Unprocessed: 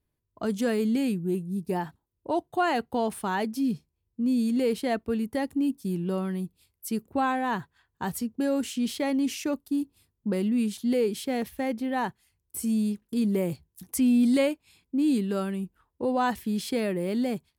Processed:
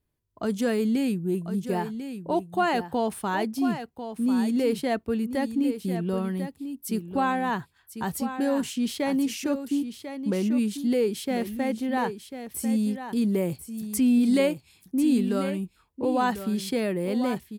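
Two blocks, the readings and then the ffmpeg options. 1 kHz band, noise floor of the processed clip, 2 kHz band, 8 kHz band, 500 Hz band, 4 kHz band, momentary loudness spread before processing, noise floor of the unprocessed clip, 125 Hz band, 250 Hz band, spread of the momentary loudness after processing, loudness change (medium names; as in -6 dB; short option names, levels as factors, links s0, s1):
+1.5 dB, -65 dBFS, +1.5 dB, +1.5 dB, +1.5 dB, +1.5 dB, 9 LU, -80 dBFS, +1.5 dB, +1.5 dB, 9 LU, +1.0 dB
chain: -af "aecho=1:1:1045:0.316,volume=1.12"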